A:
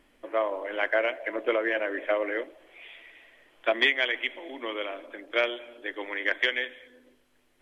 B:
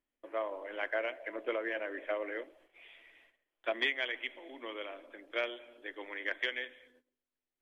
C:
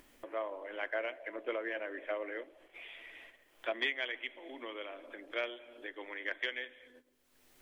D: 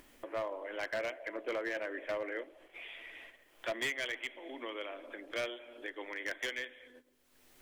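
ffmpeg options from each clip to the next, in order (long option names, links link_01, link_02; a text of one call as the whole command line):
ffmpeg -i in.wav -af "agate=range=-19dB:threshold=-54dB:ratio=16:detection=peak,volume=-9dB" out.wav
ffmpeg -i in.wav -af "acompressor=mode=upward:threshold=-38dB:ratio=2.5,volume=-2dB" out.wav
ffmpeg -i in.wav -af "volume=32.5dB,asoftclip=hard,volume=-32.5dB,volume=2dB" out.wav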